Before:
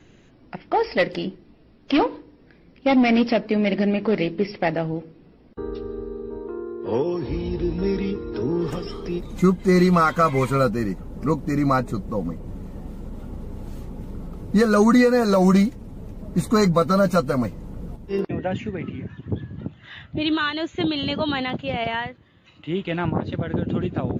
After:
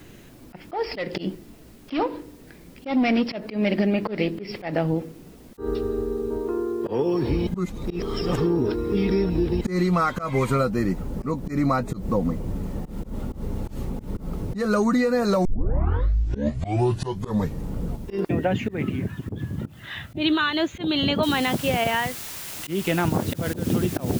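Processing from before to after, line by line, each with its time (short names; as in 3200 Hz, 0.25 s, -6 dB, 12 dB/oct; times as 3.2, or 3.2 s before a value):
7.47–9.61 reverse
15.45 tape start 2.27 s
21.23 noise floor step -64 dB -41 dB
whole clip: compressor 10:1, threshold -23 dBFS; auto swell 0.123 s; gain +5.5 dB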